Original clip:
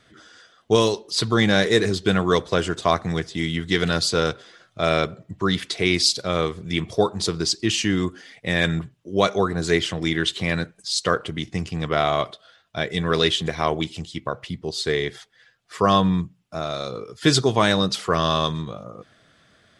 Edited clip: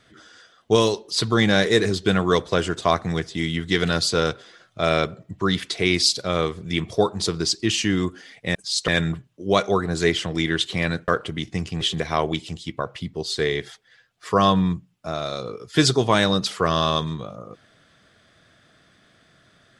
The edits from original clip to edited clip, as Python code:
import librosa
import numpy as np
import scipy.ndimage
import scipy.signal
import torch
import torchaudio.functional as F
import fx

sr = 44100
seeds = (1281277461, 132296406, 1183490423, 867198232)

y = fx.edit(x, sr, fx.move(start_s=10.75, length_s=0.33, to_s=8.55),
    fx.cut(start_s=11.81, length_s=1.48), tone=tone)